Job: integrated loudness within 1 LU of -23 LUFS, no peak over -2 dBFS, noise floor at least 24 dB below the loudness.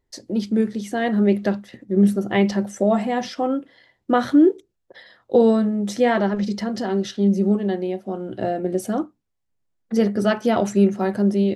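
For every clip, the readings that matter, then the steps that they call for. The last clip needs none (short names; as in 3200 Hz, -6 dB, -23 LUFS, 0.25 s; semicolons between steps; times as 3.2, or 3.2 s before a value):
loudness -21.0 LUFS; peak -5.0 dBFS; loudness target -23.0 LUFS
-> gain -2 dB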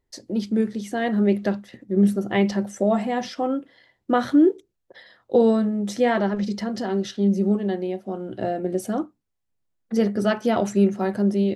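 loudness -23.0 LUFS; peak -7.0 dBFS; noise floor -76 dBFS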